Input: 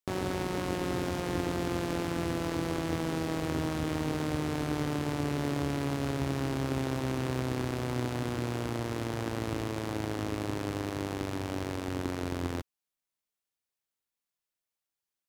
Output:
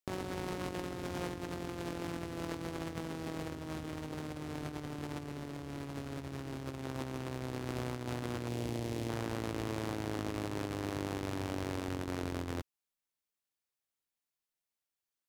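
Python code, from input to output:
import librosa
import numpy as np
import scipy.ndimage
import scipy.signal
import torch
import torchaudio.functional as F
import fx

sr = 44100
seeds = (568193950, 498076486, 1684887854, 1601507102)

y = fx.peak_eq(x, sr, hz=1300.0, db=-10.5, octaves=0.97, at=(8.48, 9.09))
y = fx.over_compress(y, sr, threshold_db=-34.0, ratio=-0.5)
y = F.gain(torch.from_numpy(y), -4.5).numpy()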